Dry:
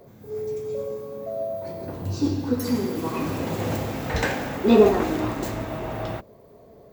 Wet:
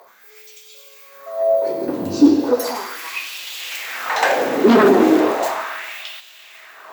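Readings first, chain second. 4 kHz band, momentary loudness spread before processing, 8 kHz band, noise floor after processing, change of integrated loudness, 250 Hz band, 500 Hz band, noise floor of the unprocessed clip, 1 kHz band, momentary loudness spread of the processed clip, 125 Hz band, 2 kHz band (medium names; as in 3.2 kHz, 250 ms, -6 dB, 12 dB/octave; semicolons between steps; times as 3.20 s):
+9.0 dB, 14 LU, +7.5 dB, -46 dBFS, +7.5 dB, +7.0 dB, +5.5 dB, -50 dBFS, +9.0 dB, 16 LU, -8.0 dB, +9.5 dB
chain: sine folder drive 11 dB, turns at -3.5 dBFS; echo that smears into a reverb 455 ms, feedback 58%, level -13 dB; LFO high-pass sine 0.36 Hz 260–3200 Hz; trim -7 dB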